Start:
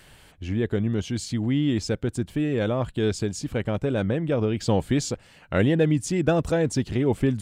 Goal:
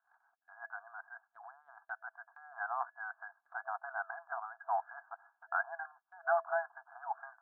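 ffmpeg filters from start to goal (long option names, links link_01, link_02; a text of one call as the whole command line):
ffmpeg -i in.wav -af "afftfilt=real='re*between(b*sr/4096,660,1700)':imag='im*between(b*sr/4096,660,1700)':win_size=4096:overlap=0.75,agate=range=-23dB:threshold=-58dB:ratio=16:detection=peak,volume=-1dB" out.wav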